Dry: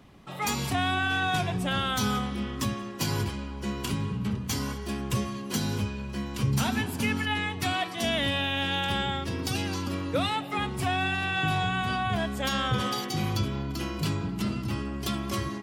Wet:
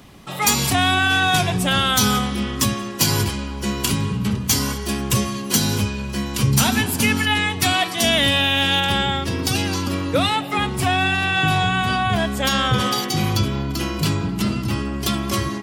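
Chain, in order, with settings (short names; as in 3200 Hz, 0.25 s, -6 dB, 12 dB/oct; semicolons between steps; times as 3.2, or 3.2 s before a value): high shelf 4000 Hz +9.5 dB, from 8.8 s +4 dB; gain +8 dB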